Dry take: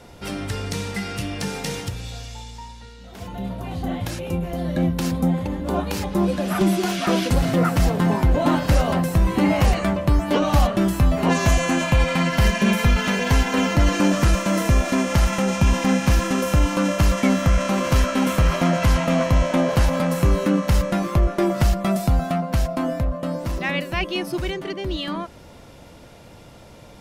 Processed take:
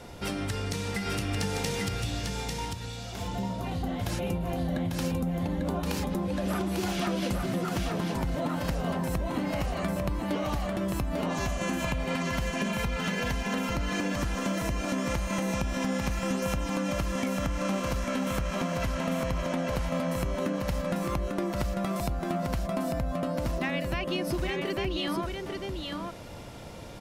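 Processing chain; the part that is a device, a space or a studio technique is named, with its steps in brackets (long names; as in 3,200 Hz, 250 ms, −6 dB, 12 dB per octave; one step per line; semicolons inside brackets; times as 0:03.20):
serial compression, peaks first (downward compressor, threshold −23 dBFS, peak gain reduction 10.5 dB; downward compressor, threshold −28 dBFS, peak gain reduction 7.5 dB)
single-tap delay 846 ms −4 dB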